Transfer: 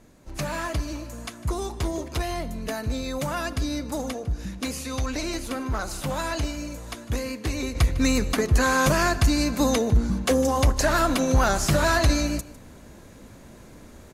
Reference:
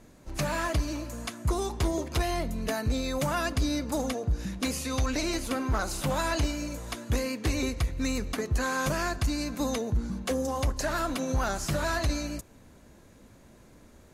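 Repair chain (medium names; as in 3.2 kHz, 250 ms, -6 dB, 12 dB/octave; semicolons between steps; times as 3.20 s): inverse comb 153 ms -18.5 dB; trim 0 dB, from 7.75 s -8 dB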